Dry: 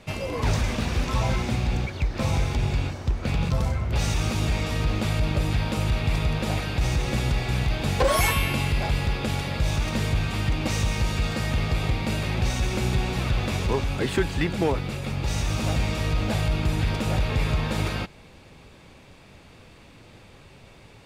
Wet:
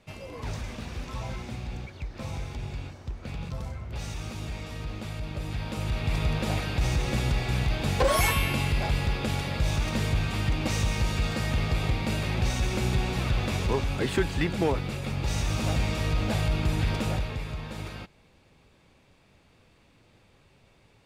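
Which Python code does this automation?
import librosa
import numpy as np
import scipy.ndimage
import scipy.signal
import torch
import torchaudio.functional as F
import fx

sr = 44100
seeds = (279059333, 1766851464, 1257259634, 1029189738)

y = fx.gain(x, sr, db=fx.line((5.27, -11.0), (6.28, -2.0), (17.04, -2.0), (17.44, -11.0)))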